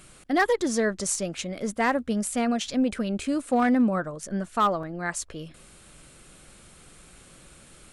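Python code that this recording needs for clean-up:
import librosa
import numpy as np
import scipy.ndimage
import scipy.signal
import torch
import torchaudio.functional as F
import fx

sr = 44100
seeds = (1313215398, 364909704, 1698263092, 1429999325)

y = fx.fix_declip(x, sr, threshold_db=-15.0)
y = fx.fix_interpolate(y, sr, at_s=(4.83,), length_ms=3.6)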